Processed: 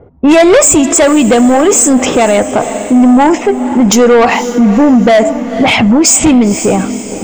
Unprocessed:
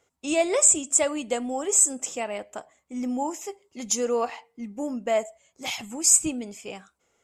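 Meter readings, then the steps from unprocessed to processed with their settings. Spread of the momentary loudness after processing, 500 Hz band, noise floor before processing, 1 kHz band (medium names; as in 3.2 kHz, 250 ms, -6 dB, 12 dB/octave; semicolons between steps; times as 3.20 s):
6 LU, +19.5 dB, -73 dBFS, +21.0 dB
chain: low-pass 7.8 kHz 24 dB/octave; level-controlled noise filter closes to 550 Hz, open at -22 dBFS; tone controls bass +6 dB, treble -10 dB; in parallel at +0.5 dB: compression, threshold -33 dBFS, peak gain reduction 15 dB; on the sum: saturation -24.5 dBFS, distortion -10 dB; echo that smears into a reverb 501 ms, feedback 43%, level -15.5 dB; loudness maximiser +28.5 dB; trim -1 dB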